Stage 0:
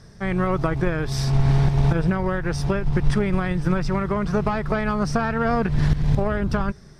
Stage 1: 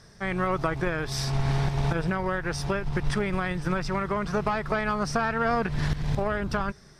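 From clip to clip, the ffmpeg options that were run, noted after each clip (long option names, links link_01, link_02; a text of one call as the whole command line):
ffmpeg -i in.wav -af "lowshelf=frequency=440:gain=-8.5" out.wav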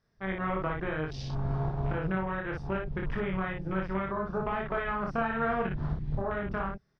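ffmpeg -i in.wav -filter_complex "[0:a]afwtdn=0.0224,lowpass=3800,asplit=2[link_01][link_02];[link_02]aecho=0:1:26|58:0.668|0.708[link_03];[link_01][link_03]amix=inputs=2:normalize=0,volume=-7dB" out.wav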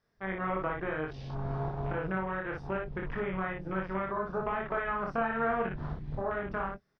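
ffmpeg -i in.wav -filter_complex "[0:a]acrossover=split=2800[link_01][link_02];[link_02]acompressor=threshold=-59dB:ratio=4:attack=1:release=60[link_03];[link_01][link_03]amix=inputs=2:normalize=0,bass=frequency=250:gain=-6,treble=frequency=4000:gain=-3,asplit=2[link_04][link_05];[link_05]adelay=22,volume=-14dB[link_06];[link_04][link_06]amix=inputs=2:normalize=0" out.wav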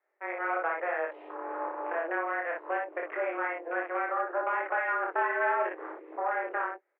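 ffmpeg -i in.wav -af "dynaudnorm=framelen=110:gausssize=7:maxgain=4dB,asoftclip=type=tanh:threshold=-19dB,highpass=frequency=220:width_type=q:width=0.5412,highpass=frequency=220:width_type=q:width=1.307,lowpass=frequency=2300:width_type=q:width=0.5176,lowpass=frequency=2300:width_type=q:width=0.7071,lowpass=frequency=2300:width_type=q:width=1.932,afreqshift=170" out.wav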